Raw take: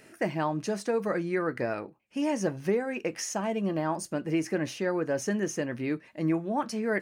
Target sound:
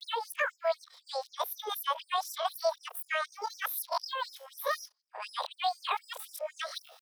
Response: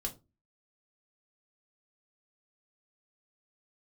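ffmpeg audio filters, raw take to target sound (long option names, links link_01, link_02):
-af "areverse,asetrate=88200,aresample=44100,atempo=0.5,afftfilt=real='re*gte(b*sr/1024,420*pow(5100/420,0.5+0.5*sin(2*PI*4*pts/sr)))':imag='im*gte(b*sr/1024,420*pow(5100/420,0.5+0.5*sin(2*PI*4*pts/sr)))':win_size=1024:overlap=0.75"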